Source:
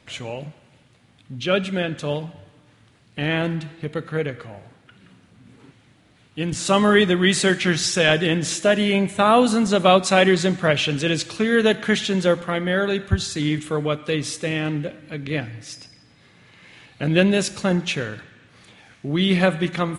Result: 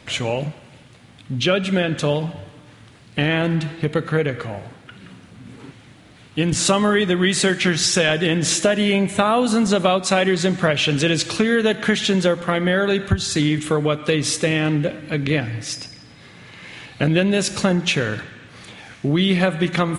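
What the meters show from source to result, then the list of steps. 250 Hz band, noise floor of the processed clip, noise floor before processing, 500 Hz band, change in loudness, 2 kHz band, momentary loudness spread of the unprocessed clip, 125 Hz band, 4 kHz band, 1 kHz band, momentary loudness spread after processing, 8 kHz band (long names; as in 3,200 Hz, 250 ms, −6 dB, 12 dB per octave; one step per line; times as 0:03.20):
+2.0 dB, −47 dBFS, −56 dBFS, +0.5 dB, +1.0 dB, +1.0 dB, 16 LU, +3.0 dB, +2.0 dB, −1.0 dB, 13 LU, +4.5 dB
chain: downward compressor 5 to 1, threshold −24 dBFS, peak gain reduction 13.5 dB
level +9 dB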